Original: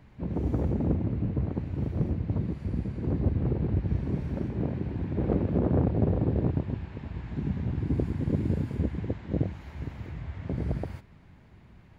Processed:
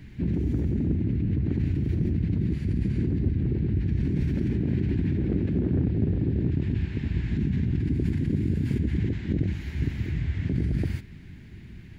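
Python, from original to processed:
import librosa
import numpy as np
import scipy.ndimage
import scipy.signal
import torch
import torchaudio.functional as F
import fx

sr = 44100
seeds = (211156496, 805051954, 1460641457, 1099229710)

p1 = fx.over_compress(x, sr, threshold_db=-33.0, ratio=-0.5)
p2 = x + (p1 * 10.0 ** (1.5 / 20.0))
y = fx.band_shelf(p2, sr, hz=790.0, db=-15.0, octaves=1.7)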